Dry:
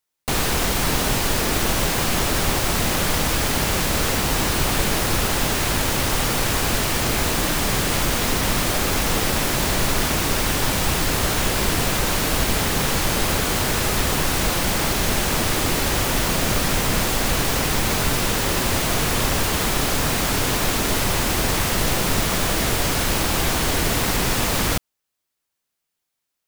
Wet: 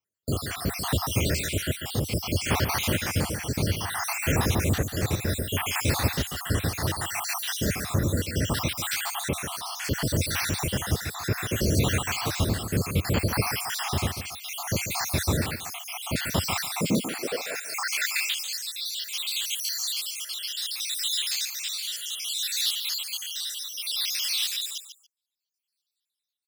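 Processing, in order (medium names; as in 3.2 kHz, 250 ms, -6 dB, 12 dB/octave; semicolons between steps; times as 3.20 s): random holes in the spectrogram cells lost 72%; rotary cabinet horn 0.65 Hz; on a send: feedback delay 143 ms, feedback 17%, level -9.5 dB; on the sum: high-pass sweep 88 Hz -> 3.7 kHz, 16.53–18.38 s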